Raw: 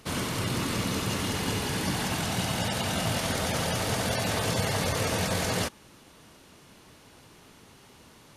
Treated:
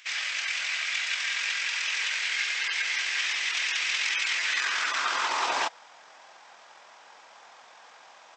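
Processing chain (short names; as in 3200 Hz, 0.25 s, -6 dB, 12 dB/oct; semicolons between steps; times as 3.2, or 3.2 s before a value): pitch shift -10 st; high-pass sweep 2200 Hz -> 840 Hz, 4.33–5.56; gain +3.5 dB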